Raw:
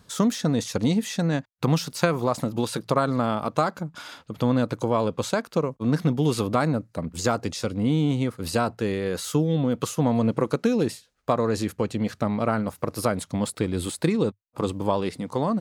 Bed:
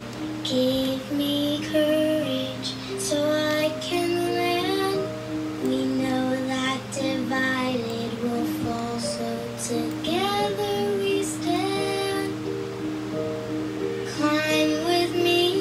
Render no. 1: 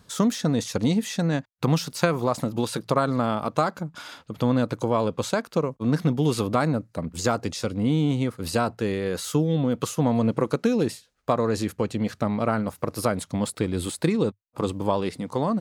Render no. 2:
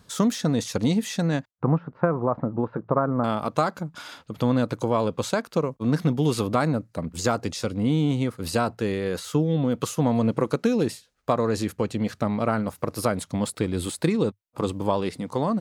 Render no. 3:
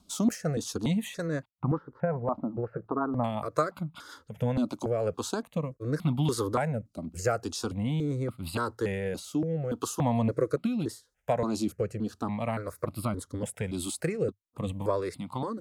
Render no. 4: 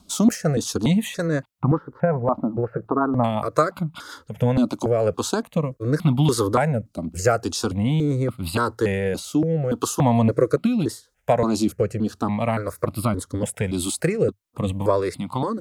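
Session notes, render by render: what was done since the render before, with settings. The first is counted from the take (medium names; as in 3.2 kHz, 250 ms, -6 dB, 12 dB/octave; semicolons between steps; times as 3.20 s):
no audible change
1.51–3.24 s: low-pass 1.4 kHz 24 dB/octave; 9.19–9.62 s: treble shelf 4.7 kHz -7.5 dB
rotary cabinet horn 5.5 Hz, later 0.8 Hz, at 4.33 s; stepped phaser 3.5 Hz 470–1700 Hz
trim +8.5 dB; peak limiter -3 dBFS, peak gain reduction 1 dB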